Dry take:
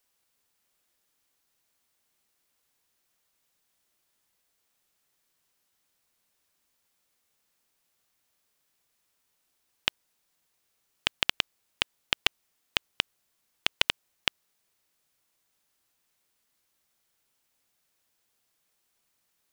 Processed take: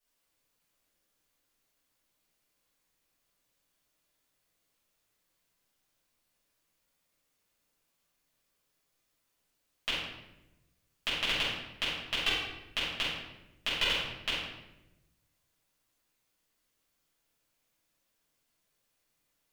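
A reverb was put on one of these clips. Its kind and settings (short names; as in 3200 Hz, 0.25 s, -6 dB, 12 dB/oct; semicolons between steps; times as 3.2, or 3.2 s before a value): shoebox room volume 400 m³, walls mixed, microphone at 6.4 m; gain -15 dB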